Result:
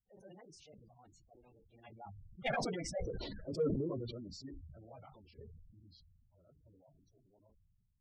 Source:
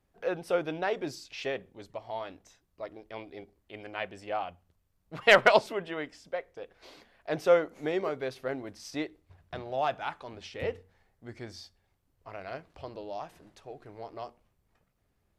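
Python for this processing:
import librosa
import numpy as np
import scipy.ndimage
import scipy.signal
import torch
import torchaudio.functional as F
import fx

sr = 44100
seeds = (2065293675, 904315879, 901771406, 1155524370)

p1 = fx.doppler_pass(x, sr, speed_mps=36, closest_m=7.7, pass_at_s=5.87)
p2 = fx.stretch_vocoder_free(p1, sr, factor=0.52)
p3 = fx.bass_treble(p2, sr, bass_db=14, treble_db=8)
p4 = fx.spec_gate(p3, sr, threshold_db=-15, keep='strong')
p5 = 10.0 ** (-37.0 / 20.0) * np.tanh(p4 / 10.0 ** (-37.0 / 20.0))
p6 = p4 + F.gain(torch.from_numpy(p5), -11.0).numpy()
p7 = fx.sustainer(p6, sr, db_per_s=28.0)
y = F.gain(torch.from_numpy(p7), 1.0).numpy()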